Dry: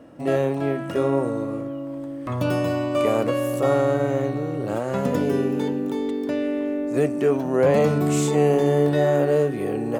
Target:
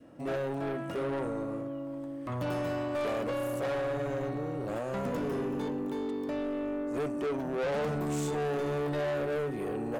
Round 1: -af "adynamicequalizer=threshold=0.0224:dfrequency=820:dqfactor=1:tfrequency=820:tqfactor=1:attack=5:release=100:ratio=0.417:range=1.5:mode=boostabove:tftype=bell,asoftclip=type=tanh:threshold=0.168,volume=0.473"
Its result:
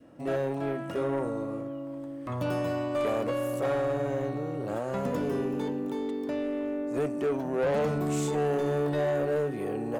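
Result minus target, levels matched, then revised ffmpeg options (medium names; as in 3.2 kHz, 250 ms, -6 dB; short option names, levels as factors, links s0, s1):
saturation: distortion -6 dB
-af "adynamicequalizer=threshold=0.0224:dfrequency=820:dqfactor=1:tfrequency=820:tqfactor=1:attack=5:release=100:ratio=0.417:range=1.5:mode=boostabove:tftype=bell,asoftclip=type=tanh:threshold=0.0794,volume=0.473"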